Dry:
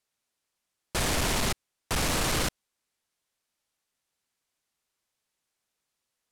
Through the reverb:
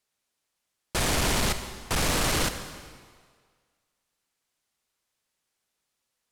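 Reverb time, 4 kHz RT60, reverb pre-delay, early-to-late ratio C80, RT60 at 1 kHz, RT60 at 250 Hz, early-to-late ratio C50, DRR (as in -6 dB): 1.8 s, 1.6 s, 38 ms, 10.5 dB, 1.8 s, 1.5 s, 9.5 dB, 9.0 dB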